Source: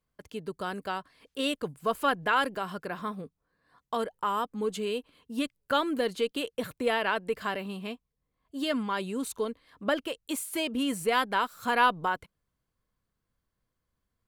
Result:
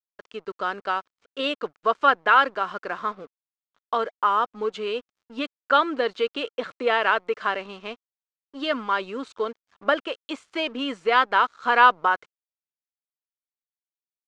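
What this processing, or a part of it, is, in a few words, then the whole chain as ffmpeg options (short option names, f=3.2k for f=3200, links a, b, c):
pocket radio on a weak battery: -af "highpass=370,lowpass=3.8k,aeval=exprs='sgn(val(0))*max(abs(val(0))-0.00158,0)':c=same,lowpass=f=7.3k:w=0.5412,lowpass=f=7.3k:w=1.3066,equalizer=f=1.3k:t=o:w=0.4:g=6,volume=6dB"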